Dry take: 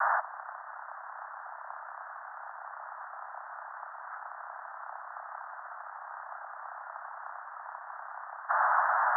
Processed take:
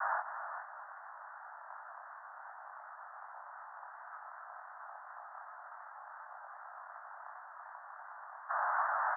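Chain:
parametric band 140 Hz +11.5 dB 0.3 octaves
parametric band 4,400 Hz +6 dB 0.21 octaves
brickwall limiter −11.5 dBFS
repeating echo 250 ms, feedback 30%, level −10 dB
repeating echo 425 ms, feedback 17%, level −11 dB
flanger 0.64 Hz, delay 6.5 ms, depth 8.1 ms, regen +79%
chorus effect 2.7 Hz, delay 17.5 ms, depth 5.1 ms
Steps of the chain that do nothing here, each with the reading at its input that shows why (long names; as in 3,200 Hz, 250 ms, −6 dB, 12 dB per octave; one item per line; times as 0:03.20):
parametric band 140 Hz: nothing at its input below 510 Hz
parametric band 4,400 Hz: nothing at its input above 2,000 Hz
brickwall limiter −11.5 dBFS: peak of its input −14.5 dBFS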